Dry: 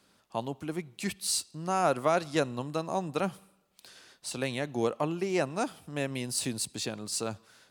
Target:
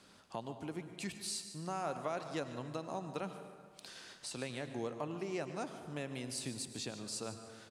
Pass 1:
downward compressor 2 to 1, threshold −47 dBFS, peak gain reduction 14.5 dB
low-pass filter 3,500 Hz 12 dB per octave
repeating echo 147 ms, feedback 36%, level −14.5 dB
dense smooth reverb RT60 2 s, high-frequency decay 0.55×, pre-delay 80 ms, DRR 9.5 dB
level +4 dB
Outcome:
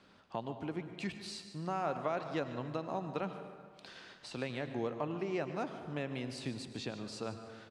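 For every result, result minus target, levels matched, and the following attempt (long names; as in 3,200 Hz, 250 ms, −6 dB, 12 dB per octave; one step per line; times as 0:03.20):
8,000 Hz band −12.5 dB; downward compressor: peak gain reduction −3 dB
downward compressor 2 to 1, threshold −47 dBFS, peak gain reduction 14.5 dB
low-pass filter 9,900 Hz 12 dB per octave
repeating echo 147 ms, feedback 36%, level −14.5 dB
dense smooth reverb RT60 2 s, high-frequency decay 0.55×, pre-delay 80 ms, DRR 9.5 dB
level +4 dB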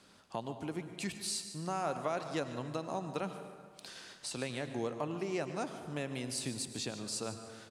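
downward compressor: peak gain reduction −3 dB
downward compressor 2 to 1, threshold −53.5 dBFS, peak gain reduction 17.5 dB
low-pass filter 9,900 Hz 12 dB per octave
repeating echo 147 ms, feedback 36%, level −14.5 dB
dense smooth reverb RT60 2 s, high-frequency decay 0.55×, pre-delay 80 ms, DRR 9.5 dB
level +4 dB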